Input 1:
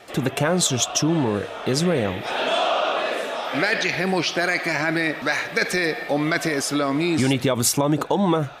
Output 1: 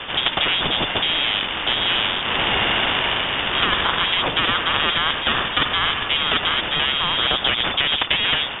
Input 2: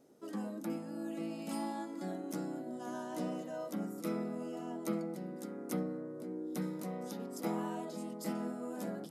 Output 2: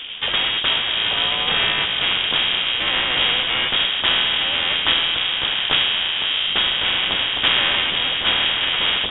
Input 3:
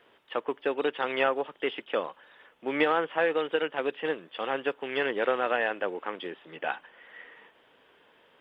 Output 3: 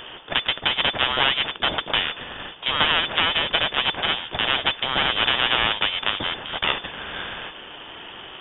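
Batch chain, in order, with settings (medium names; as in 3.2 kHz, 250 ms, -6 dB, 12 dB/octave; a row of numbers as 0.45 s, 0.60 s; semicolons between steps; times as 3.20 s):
comb filter that takes the minimum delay 0.38 ms; frequency inversion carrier 3.5 kHz; spectrum-flattening compressor 2:1; peak normalisation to -3 dBFS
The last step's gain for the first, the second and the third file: +4.0 dB, +19.5 dB, +7.5 dB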